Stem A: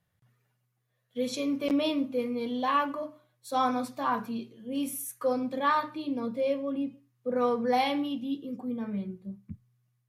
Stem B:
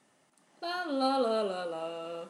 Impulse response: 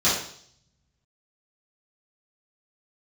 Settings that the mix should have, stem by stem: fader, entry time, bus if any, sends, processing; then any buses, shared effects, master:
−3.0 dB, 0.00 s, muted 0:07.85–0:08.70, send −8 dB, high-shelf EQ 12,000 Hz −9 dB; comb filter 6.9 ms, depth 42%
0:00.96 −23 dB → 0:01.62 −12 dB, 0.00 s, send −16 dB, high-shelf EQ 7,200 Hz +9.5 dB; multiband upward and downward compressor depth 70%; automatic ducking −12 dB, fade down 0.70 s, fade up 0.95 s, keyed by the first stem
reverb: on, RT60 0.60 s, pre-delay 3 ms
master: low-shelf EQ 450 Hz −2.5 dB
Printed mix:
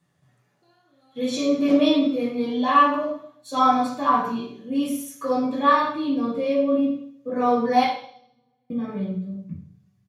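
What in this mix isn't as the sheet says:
stem B −23.0 dB → −32.5 dB
master: missing low-shelf EQ 450 Hz −2.5 dB

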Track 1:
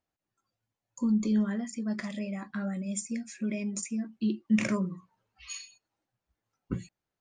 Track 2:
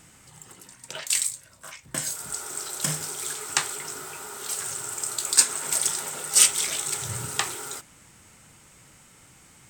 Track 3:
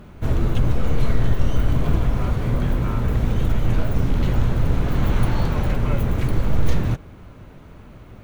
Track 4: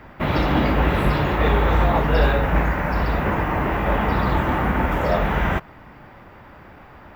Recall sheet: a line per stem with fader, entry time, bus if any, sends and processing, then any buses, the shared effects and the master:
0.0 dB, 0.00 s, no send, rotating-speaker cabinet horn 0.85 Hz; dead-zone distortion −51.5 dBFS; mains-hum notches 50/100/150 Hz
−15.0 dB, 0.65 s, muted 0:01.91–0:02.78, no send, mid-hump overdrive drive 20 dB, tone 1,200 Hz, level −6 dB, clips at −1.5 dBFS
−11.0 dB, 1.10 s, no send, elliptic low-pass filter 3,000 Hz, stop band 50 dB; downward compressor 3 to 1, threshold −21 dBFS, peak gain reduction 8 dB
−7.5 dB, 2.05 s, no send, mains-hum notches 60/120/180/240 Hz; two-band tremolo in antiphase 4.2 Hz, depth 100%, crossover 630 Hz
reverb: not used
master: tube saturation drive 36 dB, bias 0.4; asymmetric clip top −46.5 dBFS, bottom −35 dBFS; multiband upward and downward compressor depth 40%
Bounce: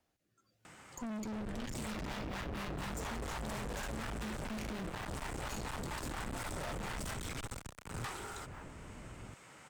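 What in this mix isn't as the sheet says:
stem 1: missing dead-zone distortion −51.5 dBFS
stem 4: entry 2.05 s → 1.55 s
master: missing tube saturation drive 36 dB, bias 0.4

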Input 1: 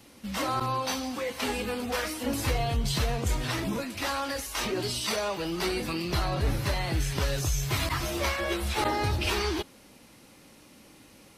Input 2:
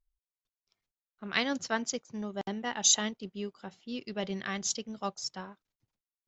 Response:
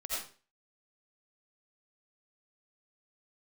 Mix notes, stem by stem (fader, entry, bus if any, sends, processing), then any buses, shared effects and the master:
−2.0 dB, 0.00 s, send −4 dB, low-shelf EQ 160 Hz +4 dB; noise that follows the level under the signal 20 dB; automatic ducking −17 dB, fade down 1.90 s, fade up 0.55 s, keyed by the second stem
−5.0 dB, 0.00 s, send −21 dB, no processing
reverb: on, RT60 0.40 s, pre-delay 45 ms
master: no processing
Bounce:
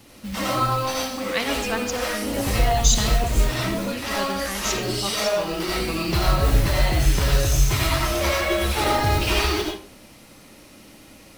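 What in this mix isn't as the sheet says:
stem 2 −5.0 dB → +2.0 dB
reverb return +8.0 dB

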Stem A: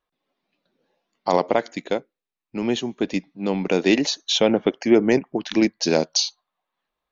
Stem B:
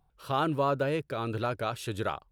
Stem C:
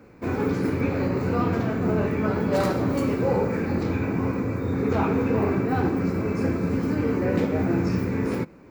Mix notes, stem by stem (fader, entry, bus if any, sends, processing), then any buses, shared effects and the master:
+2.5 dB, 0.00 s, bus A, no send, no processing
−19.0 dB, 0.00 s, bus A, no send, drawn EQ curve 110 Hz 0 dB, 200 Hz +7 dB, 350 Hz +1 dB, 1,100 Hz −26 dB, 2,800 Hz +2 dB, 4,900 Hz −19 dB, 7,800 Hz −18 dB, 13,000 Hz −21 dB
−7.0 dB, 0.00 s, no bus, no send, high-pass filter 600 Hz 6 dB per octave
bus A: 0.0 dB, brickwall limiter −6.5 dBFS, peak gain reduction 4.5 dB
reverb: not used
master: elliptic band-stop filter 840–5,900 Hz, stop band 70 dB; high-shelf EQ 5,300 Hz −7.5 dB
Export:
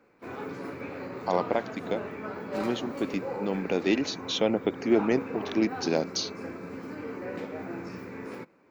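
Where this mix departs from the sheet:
stem A +2.5 dB → −7.0 dB
stem B: missing drawn EQ curve 110 Hz 0 dB, 200 Hz +7 dB, 350 Hz +1 dB, 1,100 Hz −26 dB, 2,800 Hz +2 dB, 4,900 Hz −19 dB, 7,800 Hz −18 dB, 13,000 Hz −21 dB
master: missing elliptic band-stop filter 840–5,900 Hz, stop band 70 dB

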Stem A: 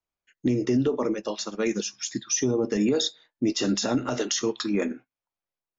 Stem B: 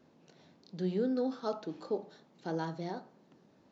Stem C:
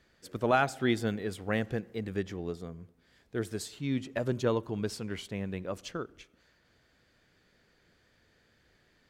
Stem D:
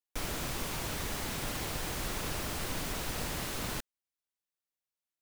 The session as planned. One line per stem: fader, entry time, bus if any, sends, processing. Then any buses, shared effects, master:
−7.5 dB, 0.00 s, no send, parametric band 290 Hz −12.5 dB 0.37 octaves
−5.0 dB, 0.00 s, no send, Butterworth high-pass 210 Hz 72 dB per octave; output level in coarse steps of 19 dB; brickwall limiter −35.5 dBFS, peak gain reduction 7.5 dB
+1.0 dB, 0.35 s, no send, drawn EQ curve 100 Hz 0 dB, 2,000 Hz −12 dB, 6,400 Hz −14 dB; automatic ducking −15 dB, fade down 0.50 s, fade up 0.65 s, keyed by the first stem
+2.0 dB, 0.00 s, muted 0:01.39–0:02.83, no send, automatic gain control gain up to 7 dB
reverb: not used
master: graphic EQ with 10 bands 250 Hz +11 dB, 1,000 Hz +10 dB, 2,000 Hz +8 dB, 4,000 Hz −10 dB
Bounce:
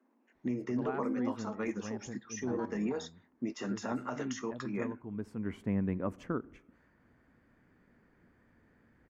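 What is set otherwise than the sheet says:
stem A −7.5 dB → −15.5 dB
stem D: muted

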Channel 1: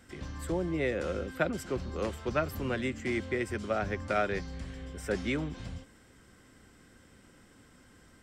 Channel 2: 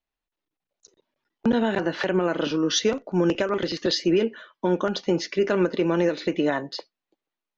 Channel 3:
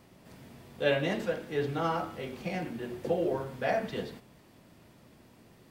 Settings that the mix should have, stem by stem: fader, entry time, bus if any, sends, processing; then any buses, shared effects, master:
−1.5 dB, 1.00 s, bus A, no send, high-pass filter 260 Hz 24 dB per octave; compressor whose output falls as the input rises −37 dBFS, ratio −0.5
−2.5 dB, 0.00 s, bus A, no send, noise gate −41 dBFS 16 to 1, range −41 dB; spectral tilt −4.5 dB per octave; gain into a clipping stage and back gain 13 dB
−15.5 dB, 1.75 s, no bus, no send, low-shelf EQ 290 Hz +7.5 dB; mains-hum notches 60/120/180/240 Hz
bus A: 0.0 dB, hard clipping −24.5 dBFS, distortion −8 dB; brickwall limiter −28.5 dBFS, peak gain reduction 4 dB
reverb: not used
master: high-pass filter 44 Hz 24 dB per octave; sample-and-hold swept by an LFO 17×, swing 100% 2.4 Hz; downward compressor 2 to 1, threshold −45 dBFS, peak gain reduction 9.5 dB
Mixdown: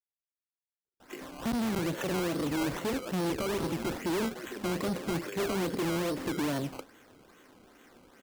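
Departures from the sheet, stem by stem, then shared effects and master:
stem 3: missing low-shelf EQ 290 Hz +7.5 dB
master: missing downward compressor 2 to 1, threshold −45 dBFS, peak gain reduction 9.5 dB

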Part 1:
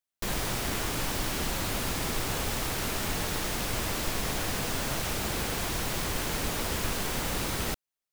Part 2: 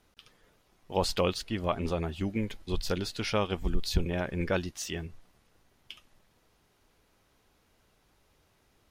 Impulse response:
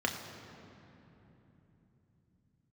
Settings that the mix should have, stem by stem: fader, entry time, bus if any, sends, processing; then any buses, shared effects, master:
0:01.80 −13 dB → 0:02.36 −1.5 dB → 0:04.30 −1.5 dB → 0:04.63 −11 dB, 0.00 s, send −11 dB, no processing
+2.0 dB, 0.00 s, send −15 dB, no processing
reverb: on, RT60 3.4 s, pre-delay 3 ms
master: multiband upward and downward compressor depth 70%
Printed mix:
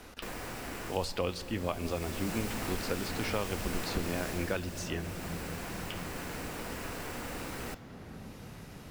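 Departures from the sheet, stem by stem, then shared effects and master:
stem 1 −13.0 dB → −21.5 dB
stem 2 +2.0 dB → −5.0 dB

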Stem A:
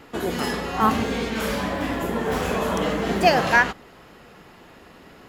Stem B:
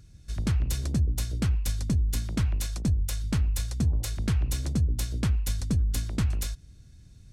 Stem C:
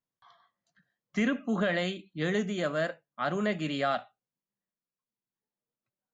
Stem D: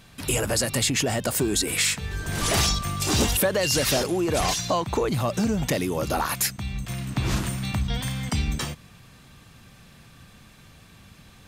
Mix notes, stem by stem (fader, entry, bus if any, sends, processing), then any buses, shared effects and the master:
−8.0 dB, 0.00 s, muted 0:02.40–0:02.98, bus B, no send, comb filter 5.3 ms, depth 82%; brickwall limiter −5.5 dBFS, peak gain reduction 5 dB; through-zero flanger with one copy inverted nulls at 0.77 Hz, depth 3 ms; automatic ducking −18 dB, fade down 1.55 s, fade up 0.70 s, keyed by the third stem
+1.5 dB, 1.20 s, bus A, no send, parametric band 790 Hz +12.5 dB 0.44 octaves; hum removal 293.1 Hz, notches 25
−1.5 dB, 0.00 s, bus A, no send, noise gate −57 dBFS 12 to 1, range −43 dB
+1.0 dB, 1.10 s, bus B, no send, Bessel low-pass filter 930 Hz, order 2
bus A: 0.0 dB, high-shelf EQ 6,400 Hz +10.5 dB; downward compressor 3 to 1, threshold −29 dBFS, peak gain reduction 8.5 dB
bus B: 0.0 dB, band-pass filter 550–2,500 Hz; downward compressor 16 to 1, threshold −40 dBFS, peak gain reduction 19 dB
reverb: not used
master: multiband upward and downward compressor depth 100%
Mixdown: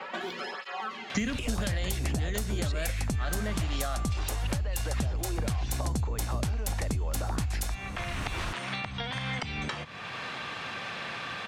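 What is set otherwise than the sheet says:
stem A −8.0 dB → −14.5 dB
stem D: missing Bessel low-pass filter 930 Hz, order 2

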